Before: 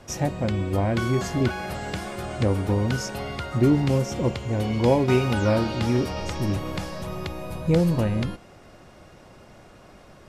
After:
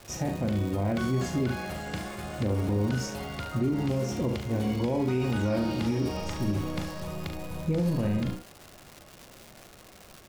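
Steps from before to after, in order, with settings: dynamic bell 240 Hz, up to +5 dB, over -34 dBFS, Q 1.1; early reflections 39 ms -7 dB, 71 ms -9.5 dB; crackle 340 per s -30 dBFS; peak limiter -14 dBFS, peak gain reduction 10.5 dB; trim -5.5 dB

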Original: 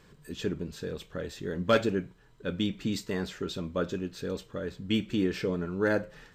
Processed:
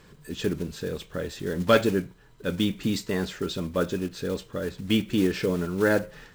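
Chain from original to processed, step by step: block-companded coder 5-bit; trim +4.5 dB

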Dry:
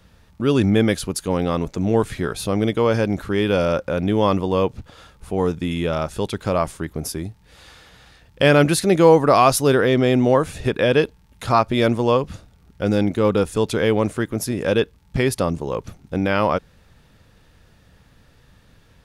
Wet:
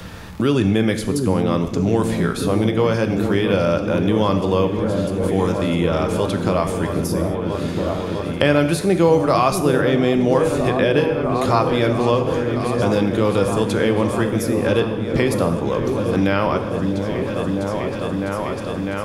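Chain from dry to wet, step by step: delay with an opening low-pass 652 ms, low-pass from 400 Hz, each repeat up 1 oct, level -6 dB; gated-style reverb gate 250 ms falling, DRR 7 dB; three bands compressed up and down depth 70%; trim -1 dB

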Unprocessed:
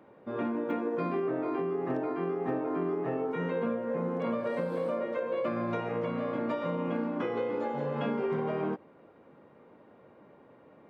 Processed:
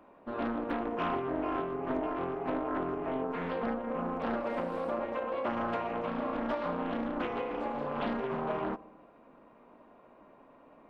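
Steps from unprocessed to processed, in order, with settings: bass shelf 450 Hz -10.5 dB; small resonant body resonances 250/670/1000/2500 Hz, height 10 dB, ringing for 20 ms; AM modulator 260 Hz, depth 35%; filtered feedback delay 70 ms, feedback 76%, low-pass 1.4 kHz, level -20 dB; loudspeaker Doppler distortion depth 0.45 ms

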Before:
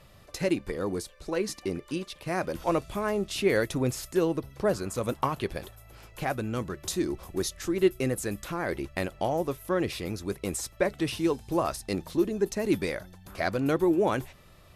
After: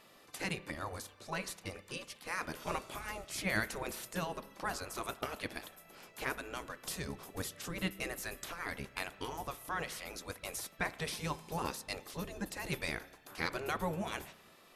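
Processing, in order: spectral gate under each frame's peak -10 dB weak; spring tank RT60 1.1 s, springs 31 ms, chirp 30 ms, DRR 16 dB; trim -1.5 dB

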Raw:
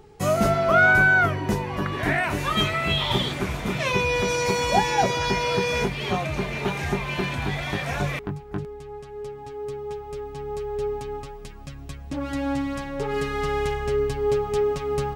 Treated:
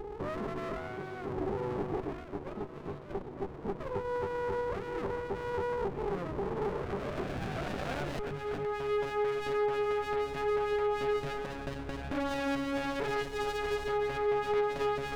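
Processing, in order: compression 12:1, threshold -31 dBFS, peak gain reduction 17.5 dB; 2.00–4.42 s: gate -33 dBFS, range -10 dB; peak limiter -29.5 dBFS, peak gain reduction 10.5 dB; dynamic bell 450 Hz, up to +4 dB, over -51 dBFS, Q 4.4; low-pass sweep 410 Hz -> 1.8 kHz, 6.54–8.42 s; peaking EQ 1.2 kHz +7.5 dB 2.6 oct; overdrive pedal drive 13 dB, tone 6.2 kHz, clips at -22 dBFS; sliding maximum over 33 samples

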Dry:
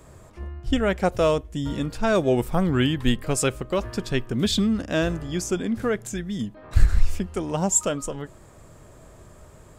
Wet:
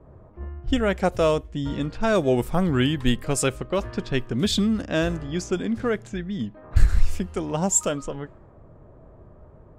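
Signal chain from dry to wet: level-controlled noise filter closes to 790 Hz, open at -19.5 dBFS

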